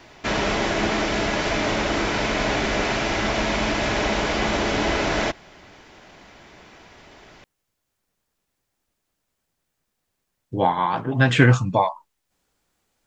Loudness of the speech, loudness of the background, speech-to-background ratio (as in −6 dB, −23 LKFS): −20.0 LKFS, −22.5 LKFS, 2.5 dB